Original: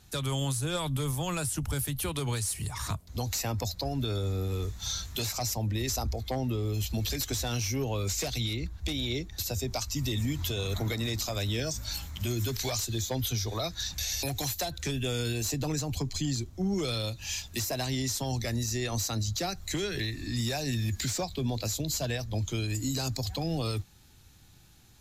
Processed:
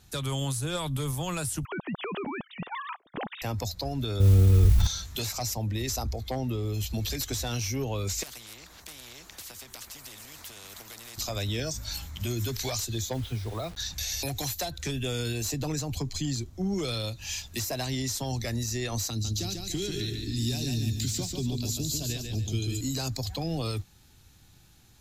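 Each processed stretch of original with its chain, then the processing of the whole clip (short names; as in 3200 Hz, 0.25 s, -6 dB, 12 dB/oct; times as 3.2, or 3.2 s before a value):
1.65–3.42 sine-wave speech + compressor, threshold -30 dBFS
4.2–4.87 RIAA curve playback + modulation noise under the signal 26 dB + sustainer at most 20 dB/s
8.23–11.18 compressor, threshold -33 dBFS + spectral compressor 4:1
13.13–13.77 air absorption 340 m + requantised 8-bit, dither none
19.1–22.81 band shelf 1100 Hz -11.5 dB 2.3 oct + notch 510 Hz, Q 7.3 + feedback echo 0.144 s, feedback 36%, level -4.5 dB
whole clip: dry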